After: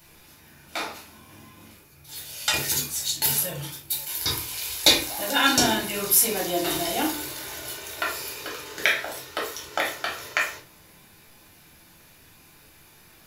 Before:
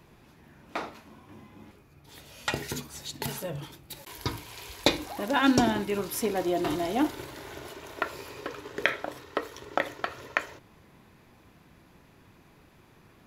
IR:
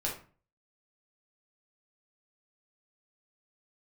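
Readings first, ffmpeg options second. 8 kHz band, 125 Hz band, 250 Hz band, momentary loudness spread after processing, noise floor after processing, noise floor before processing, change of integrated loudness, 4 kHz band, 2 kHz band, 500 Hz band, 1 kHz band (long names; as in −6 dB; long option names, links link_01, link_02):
+15.5 dB, 0.0 dB, −2.5 dB, 16 LU, −53 dBFS, −58 dBFS, +6.5 dB, +11.0 dB, +6.0 dB, +0.5 dB, +2.5 dB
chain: -filter_complex "[0:a]crystalizer=i=9.5:c=0[link_01];[1:a]atrim=start_sample=2205[link_02];[link_01][link_02]afir=irnorm=-1:irlink=0,volume=-7dB"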